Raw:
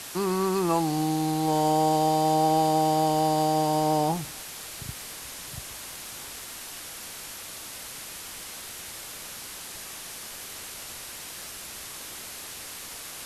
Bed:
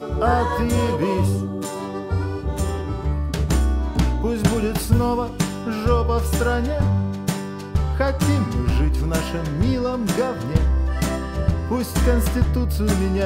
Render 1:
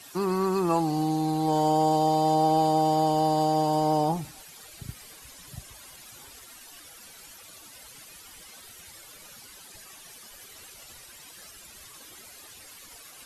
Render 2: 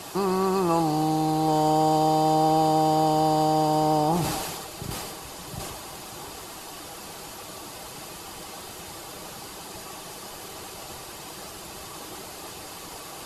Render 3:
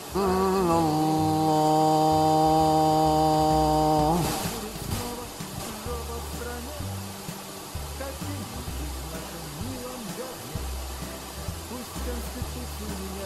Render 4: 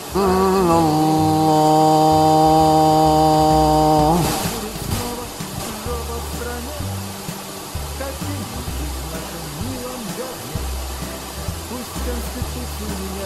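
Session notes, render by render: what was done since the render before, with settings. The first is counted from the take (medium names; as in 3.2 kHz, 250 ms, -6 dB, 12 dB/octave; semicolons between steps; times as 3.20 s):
noise reduction 13 dB, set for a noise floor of -40 dBFS
spectral levelling over time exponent 0.6; decay stretcher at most 30 dB/s
add bed -15.5 dB
trim +7.5 dB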